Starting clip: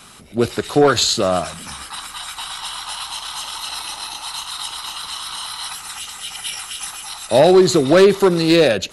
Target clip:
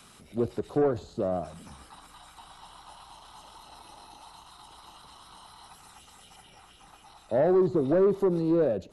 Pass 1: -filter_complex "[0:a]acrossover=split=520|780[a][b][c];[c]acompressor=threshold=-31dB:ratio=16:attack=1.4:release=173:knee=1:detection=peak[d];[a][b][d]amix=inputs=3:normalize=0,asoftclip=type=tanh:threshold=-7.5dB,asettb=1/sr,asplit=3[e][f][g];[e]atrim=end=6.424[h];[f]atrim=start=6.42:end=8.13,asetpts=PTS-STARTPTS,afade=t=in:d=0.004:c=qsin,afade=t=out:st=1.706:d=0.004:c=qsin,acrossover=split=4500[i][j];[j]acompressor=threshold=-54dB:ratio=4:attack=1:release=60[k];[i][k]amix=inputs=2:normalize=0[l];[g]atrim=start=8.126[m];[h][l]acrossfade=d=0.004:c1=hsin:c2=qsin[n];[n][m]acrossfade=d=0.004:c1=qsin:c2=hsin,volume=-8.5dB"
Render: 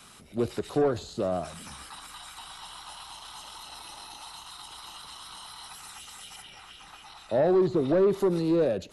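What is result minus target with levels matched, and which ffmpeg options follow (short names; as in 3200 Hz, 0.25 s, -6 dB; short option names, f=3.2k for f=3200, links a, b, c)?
compressor: peak gain reduction -10 dB
-filter_complex "[0:a]acrossover=split=520|780[a][b][c];[c]acompressor=threshold=-41.5dB:ratio=16:attack=1.4:release=173:knee=1:detection=peak[d];[a][b][d]amix=inputs=3:normalize=0,asoftclip=type=tanh:threshold=-7.5dB,asettb=1/sr,asplit=3[e][f][g];[e]atrim=end=6.424[h];[f]atrim=start=6.42:end=8.13,asetpts=PTS-STARTPTS,afade=t=in:d=0.004:c=qsin,afade=t=out:st=1.706:d=0.004:c=qsin,acrossover=split=4500[i][j];[j]acompressor=threshold=-54dB:ratio=4:attack=1:release=60[k];[i][k]amix=inputs=2:normalize=0[l];[g]atrim=start=8.126[m];[h][l]acrossfade=d=0.004:c1=hsin:c2=qsin[n];[n][m]acrossfade=d=0.004:c1=qsin:c2=hsin,volume=-8.5dB"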